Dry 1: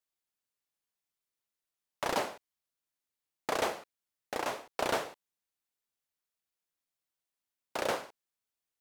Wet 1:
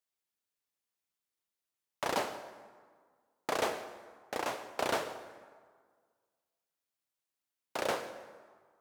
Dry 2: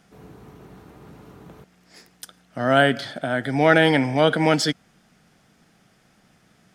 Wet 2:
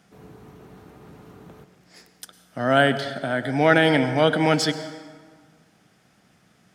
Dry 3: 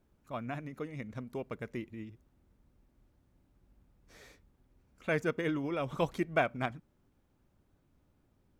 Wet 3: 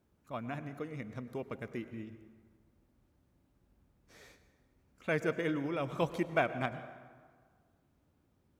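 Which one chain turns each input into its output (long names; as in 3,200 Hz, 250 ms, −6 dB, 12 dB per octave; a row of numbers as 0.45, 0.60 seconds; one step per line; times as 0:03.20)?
high-pass filter 57 Hz
dense smooth reverb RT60 1.7 s, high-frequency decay 0.6×, pre-delay 90 ms, DRR 12 dB
level −1 dB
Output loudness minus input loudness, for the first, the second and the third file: −1.0, −1.0, −1.0 LU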